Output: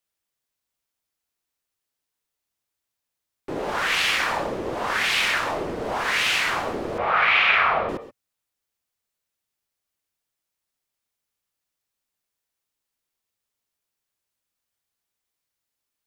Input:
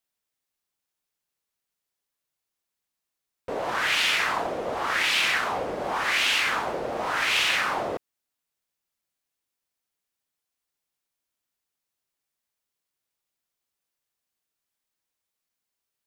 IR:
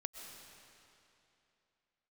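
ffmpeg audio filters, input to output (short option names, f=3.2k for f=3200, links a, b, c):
-filter_complex "[0:a]asettb=1/sr,asplit=3[a][b][c];[a]atrim=end=6.984[d];[b]atrim=start=6.98:end=7.89,asetpts=PTS-STARTPTS,afade=t=in:d=0.004:c=qsin,afade=t=out:st=0.906:d=0.004:c=qsin,highpass=180,equalizer=f=200:t=q:w=4:g=4,equalizer=f=420:t=q:w=4:g=-9,equalizer=f=830:t=q:w=4:g=6,equalizer=f=1.4k:t=q:w=4:g=9,equalizer=f=2.4k:t=q:w=4:g=7,lowpass=f=3.6k:w=0.5412,lowpass=f=3.6k:w=1.3066[e];[c]atrim=start=7.886[f];[d][e]acrossfade=d=0.004:c1=hsin:c2=qsin[g];[g][f]acrossfade=d=0.004:c1=qsin:c2=hsin[h];[1:a]atrim=start_sample=2205,atrim=end_sample=6174[i];[h][i]afir=irnorm=-1:irlink=0,afreqshift=-130,volume=4.5dB"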